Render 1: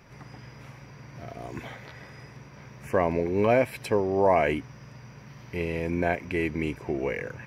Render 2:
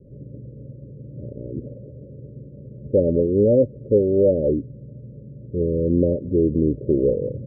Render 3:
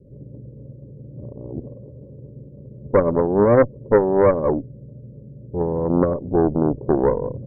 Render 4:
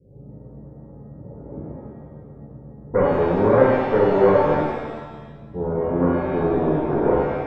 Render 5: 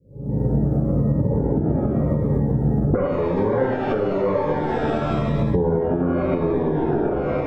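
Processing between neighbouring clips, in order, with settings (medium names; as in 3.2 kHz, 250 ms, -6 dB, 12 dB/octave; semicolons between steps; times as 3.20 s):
Chebyshev low-pass 590 Hz, order 10; in parallel at +1.5 dB: gain riding; on the sum: trim +2.5 dB
Chebyshev shaper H 3 -16 dB, 4 -17 dB, 5 -38 dB, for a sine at -6.5 dBFS; trim +4 dB
pitch-shifted reverb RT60 1.3 s, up +7 st, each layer -8 dB, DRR -7.5 dB; trim -9 dB
recorder AGC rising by 67 dB/s; Shepard-style phaser falling 0.94 Hz; trim -4 dB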